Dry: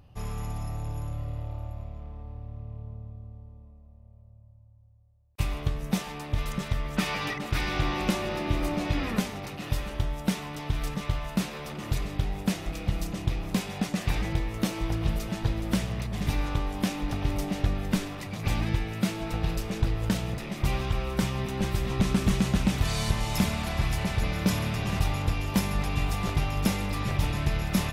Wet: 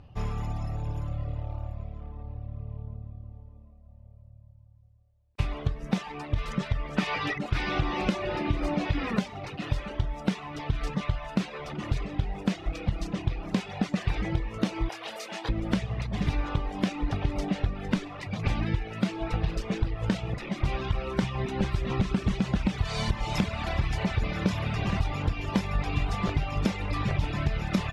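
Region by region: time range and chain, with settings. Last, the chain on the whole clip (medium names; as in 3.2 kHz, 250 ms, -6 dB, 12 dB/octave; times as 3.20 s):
14.89–15.49 s: high-pass 570 Hz + treble shelf 7.7 kHz +9.5 dB + doubling 27 ms -5 dB
whole clip: Bessel low-pass 3.9 kHz, order 2; reverb removal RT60 1 s; compression, threshold -26 dBFS; trim +4.5 dB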